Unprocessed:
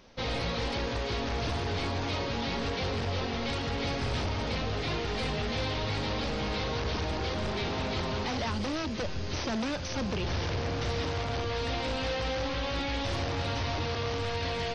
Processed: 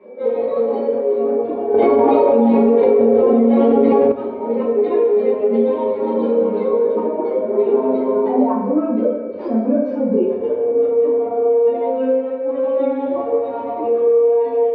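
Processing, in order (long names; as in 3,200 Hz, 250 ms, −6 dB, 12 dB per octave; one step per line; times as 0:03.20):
expanding power law on the bin magnitudes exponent 2.7
high-pass filter 400 Hz 24 dB per octave
notch filter 780 Hz, Q 12
brickwall limiter −38 dBFS, peak gain reduction 11.5 dB
steady tone 2,300 Hz −66 dBFS
high-frequency loss of the air 320 metres
convolution reverb RT60 1.5 s, pre-delay 3 ms, DRR −12.5 dB
0:01.74–0:04.12: envelope flattener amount 100%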